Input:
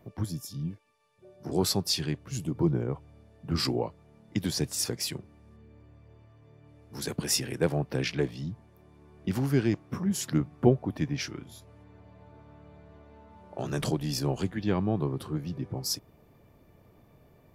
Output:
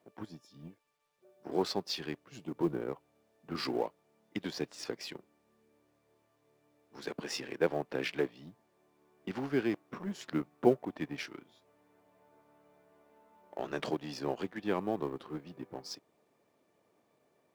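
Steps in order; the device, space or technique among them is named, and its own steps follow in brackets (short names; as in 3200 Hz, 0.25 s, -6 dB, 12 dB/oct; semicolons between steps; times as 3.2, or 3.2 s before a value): phone line with mismatched companding (BPF 320–3300 Hz; G.711 law mismatch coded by A)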